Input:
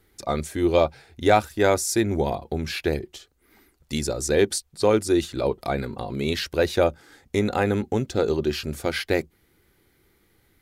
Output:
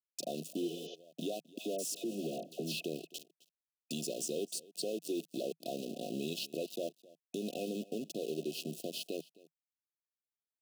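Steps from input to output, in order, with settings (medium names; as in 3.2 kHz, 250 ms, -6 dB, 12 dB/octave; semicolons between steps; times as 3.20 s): compression 6:1, threshold -35 dBFS, peak gain reduction 20.5 dB; small samples zeroed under -40.5 dBFS; brick-wall FIR band-stop 730–2500 Hz; 1.58–2.83 s: phase dispersion lows, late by 81 ms, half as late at 1.1 kHz; peak limiter -29 dBFS, peak gain reduction 5.5 dB; on a send: delay 262 ms -21.5 dB; 0.65–0.92 s: on the sum: spectral replace 410–6900 Hz before; Chebyshev high-pass 160 Hz, order 5; trim +2 dB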